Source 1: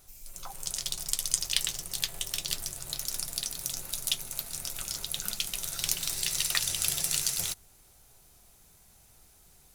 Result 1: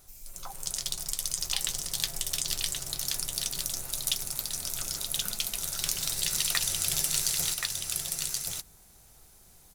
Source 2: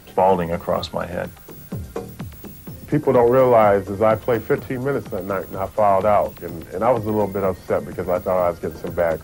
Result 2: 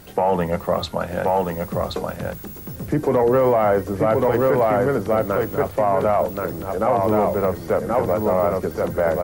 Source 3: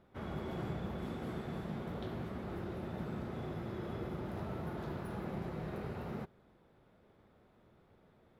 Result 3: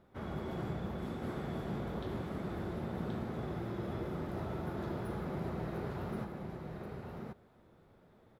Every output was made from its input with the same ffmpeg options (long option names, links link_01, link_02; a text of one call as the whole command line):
ffmpeg -i in.wav -af "equalizer=frequency=2700:width_type=o:width=0.77:gain=-2.5,aecho=1:1:1077:0.631,alimiter=level_in=9.5dB:limit=-1dB:release=50:level=0:latency=1,volume=-8.5dB" out.wav